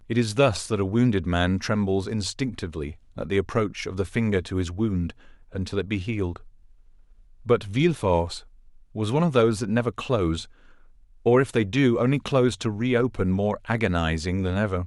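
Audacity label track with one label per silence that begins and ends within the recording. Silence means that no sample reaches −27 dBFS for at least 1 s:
6.360000	7.490000	silence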